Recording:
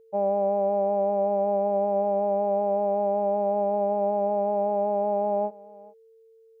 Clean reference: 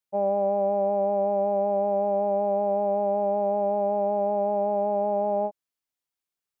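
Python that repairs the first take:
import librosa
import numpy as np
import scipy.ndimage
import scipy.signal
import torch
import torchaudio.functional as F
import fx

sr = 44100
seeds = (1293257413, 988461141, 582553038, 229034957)

y = fx.notch(x, sr, hz=450.0, q=30.0)
y = fx.fix_echo_inverse(y, sr, delay_ms=429, level_db=-22.0)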